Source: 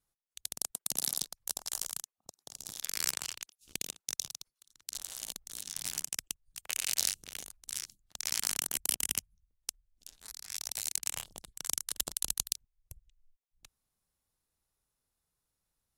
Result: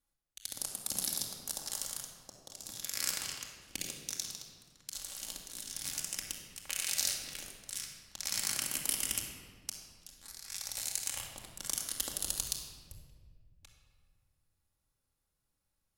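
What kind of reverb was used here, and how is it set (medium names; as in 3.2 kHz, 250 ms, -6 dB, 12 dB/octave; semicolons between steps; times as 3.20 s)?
simulated room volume 2200 m³, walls mixed, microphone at 2.3 m; trim -3.5 dB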